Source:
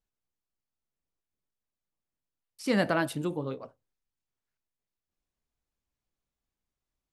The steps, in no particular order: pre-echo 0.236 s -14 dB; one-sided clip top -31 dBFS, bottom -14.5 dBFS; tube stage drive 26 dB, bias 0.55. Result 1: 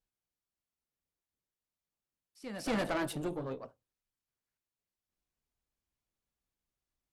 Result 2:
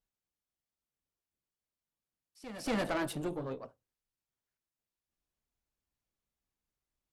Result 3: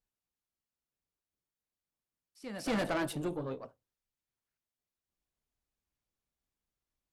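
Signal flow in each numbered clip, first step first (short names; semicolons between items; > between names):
pre-echo > one-sided clip > tube stage; one-sided clip > pre-echo > tube stage; pre-echo > tube stage > one-sided clip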